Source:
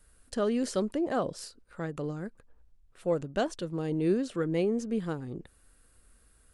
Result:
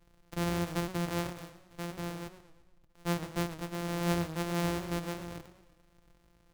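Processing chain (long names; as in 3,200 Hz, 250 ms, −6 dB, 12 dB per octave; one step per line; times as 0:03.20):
samples sorted by size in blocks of 256 samples
feedback echo with a swinging delay time 115 ms, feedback 48%, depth 143 cents, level −13 dB
level −4 dB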